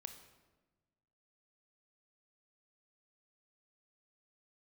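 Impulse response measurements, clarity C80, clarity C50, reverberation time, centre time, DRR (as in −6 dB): 11.0 dB, 9.0 dB, 1.2 s, 17 ms, 7.0 dB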